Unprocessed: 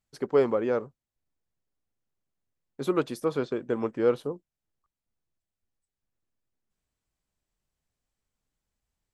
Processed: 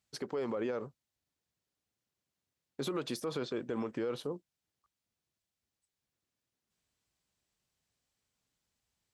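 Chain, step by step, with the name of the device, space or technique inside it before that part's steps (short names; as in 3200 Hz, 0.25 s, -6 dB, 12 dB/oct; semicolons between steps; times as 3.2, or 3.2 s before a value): broadcast voice chain (HPF 72 Hz; de-esser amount 100%; compressor 3:1, threshold -25 dBFS, peak gain reduction 6.5 dB; bell 4400 Hz +6 dB 2.1 oct; limiter -27 dBFS, peak gain reduction 11 dB)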